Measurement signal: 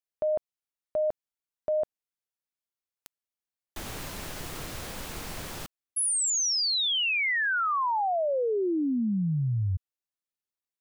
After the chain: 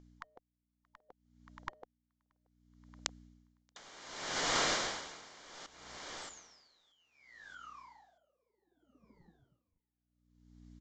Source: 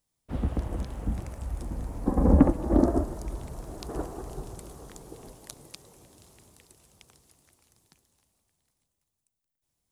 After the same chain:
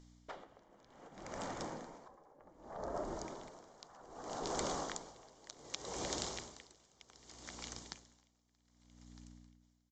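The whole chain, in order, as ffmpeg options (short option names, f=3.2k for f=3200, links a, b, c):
-af "aeval=exprs='val(0)+0.000794*(sin(2*PI*60*n/s)+sin(2*PI*2*60*n/s)/2+sin(2*PI*3*60*n/s)/3+sin(2*PI*4*60*n/s)/4+sin(2*PI*5*60*n/s)/5)':c=same,acompressor=threshold=-41dB:ratio=12:attack=16:release=914:knee=6:detection=peak,lowshelf=f=180:g=-4,afftfilt=real='re*lt(hypot(re,im),0.0158)':imag='im*lt(hypot(re,im),0.0158)':win_size=1024:overlap=0.75,bandreject=f=2.6k:w=6.9,aecho=1:1:629|1258|1887|2516:0.158|0.065|0.0266|0.0109,dynaudnorm=f=220:g=3:m=6dB,aresample=16000,aresample=44100,equalizer=f=85:w=0.31:g=-10.5,aeval=exprs='val(0)*pow(10,-25*(0.5-0.5*cos(2*PI*0.65*n/s))/20)':c=same,volume=14.5dB"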